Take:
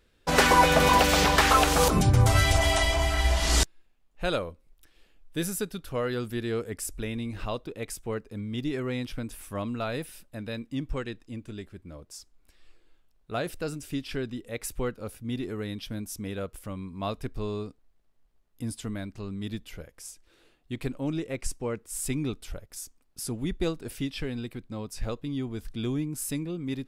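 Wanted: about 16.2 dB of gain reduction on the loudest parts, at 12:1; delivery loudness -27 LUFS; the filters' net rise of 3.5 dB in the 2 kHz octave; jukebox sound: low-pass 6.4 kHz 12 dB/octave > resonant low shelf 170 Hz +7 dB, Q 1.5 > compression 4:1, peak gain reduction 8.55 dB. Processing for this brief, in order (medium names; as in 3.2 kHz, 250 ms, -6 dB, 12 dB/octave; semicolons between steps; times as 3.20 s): peaking EQ 2 kHz +4.5 dB; compression 12:1, threshold -31 dBFS; low-pass 6.4 kHz 12 dB/octave; resonant low shelf 170 Hz +7 dB, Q 1.5; compression 4:1, threshold -32 dBFS; trim +11 dB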